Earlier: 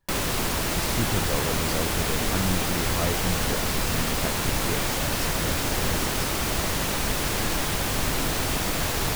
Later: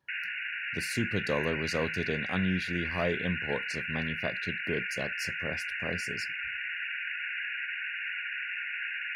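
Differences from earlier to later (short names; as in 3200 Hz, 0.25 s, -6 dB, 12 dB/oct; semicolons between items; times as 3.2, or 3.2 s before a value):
speech: add HPF 130 Hz; background: add brick-wall FIR band-pass 1400–2900 Hz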